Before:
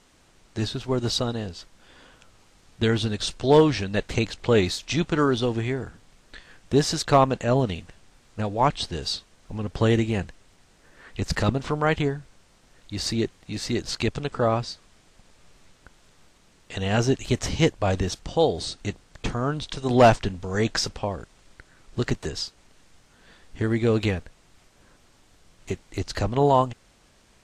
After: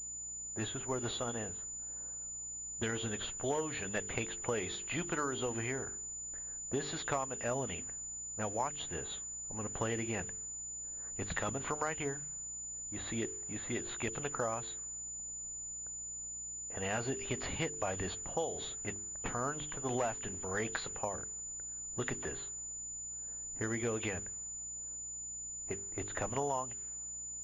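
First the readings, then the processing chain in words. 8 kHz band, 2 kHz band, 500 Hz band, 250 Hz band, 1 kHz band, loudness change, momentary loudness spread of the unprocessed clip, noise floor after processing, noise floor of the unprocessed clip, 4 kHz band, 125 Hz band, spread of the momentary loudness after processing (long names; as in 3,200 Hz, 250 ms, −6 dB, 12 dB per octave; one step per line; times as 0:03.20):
+3.5 dB, −9.0 dB, −15.0 dB, −15.5 dB, −13.5 dB, −13.0 dB, 14 LU, −44 dBFS, −59 dBFS, −15.0 dB, −17.5 dB, 5 LU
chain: hearing-aid frequency compression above 2,700 Hz 1.5 to 1
low-pass that shuts in the quiet parts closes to 700 Hz, open at −18.5 dBFS
low-shelf EQ 420 Hz −11.5 dB
hum removal 49.74 Hz, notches 9
downward compressor 10 to 1, threshold −29 dBFS, peak gain reduction 15.5 dB
mains hum 60 Hz, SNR 22 dB
switching amplifier with a slow clock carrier 7,000 Hz
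level −2.5 dB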